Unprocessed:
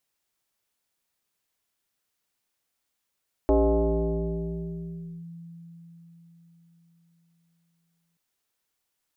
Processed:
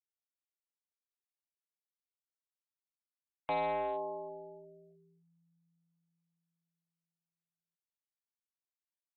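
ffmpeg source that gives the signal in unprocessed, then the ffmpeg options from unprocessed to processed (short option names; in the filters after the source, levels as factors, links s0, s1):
-f lavfi -i "aevalsrc='0.158*pow(10,-3*t/4.83)*sin(2*PI*168*t+2.4*clip(1-t/1.76,0,1)*sin(2*PI*1.34*168*t))':d=4.68:s=44100"
-af "afftfilt=real='re*gte(hypot(re,im),0.00355)':imag='im*gte(hypot(re,im),0.00355)':win_size=1024:overlap=0.75,highpass=f=970:t=q:w=2.3,aresample=8000,volume=28.2,asoftclip=hard,volume=0.0355,aresample=44100"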